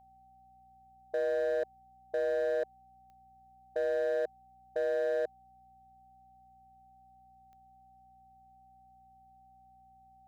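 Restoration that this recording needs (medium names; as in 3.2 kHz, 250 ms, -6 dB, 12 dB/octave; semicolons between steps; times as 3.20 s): clip repair -27 dBFS; de-click; de-hum 61.2 Hz, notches 4; band-stop 770 Hz, Q 30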